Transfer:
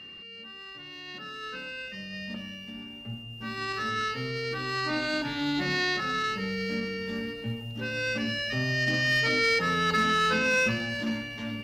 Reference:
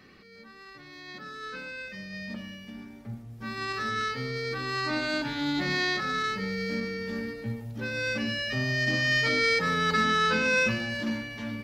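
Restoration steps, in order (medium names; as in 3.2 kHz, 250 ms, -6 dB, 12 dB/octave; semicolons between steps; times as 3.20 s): clip repair -18.5 dBFS; band-stop 2.8 kHz, Q 30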